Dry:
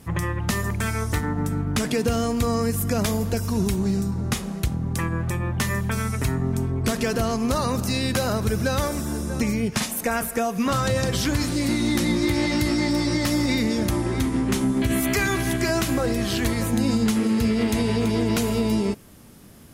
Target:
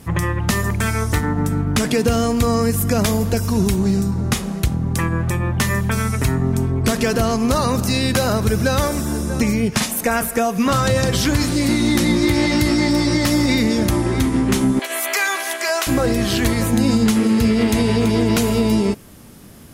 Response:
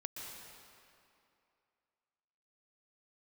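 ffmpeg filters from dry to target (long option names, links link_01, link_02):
-filter_complex "[0:a]asettb=1/sr,asplit=3[link_01][link_02][link_03];[link_01]atrim=end=14.794[link_04];[link_02]atrim=start=14.79:end=15.87,asetpts=PTS-STARTPTS,afade=type=in:duration=0.004:curve=qsin,afade=type=out:start_time=1.076:duration=0.004:curve=qsin,highpass=frequency=540:width=0.5412,highpass=frequency=540:width=1.3066[link_05];[link_03]atrim=start=15.866[link_06];[link_04][link_05]acrossfade=duration=0.004:curve1=hsin:curve2=qsin[link_07];[link_07][link_06]acrossfade=duration=0.004:curve1=qsin:curve2=hsin,volume=5.5dB"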